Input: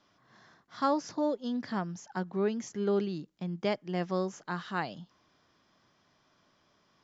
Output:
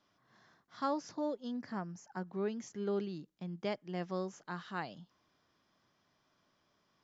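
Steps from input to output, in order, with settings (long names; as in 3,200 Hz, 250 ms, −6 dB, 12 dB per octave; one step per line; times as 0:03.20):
0:01.51–0:02.27: parametric band 3,500 Hz −11.5 dB 0.52 octaves
level −6.5 dB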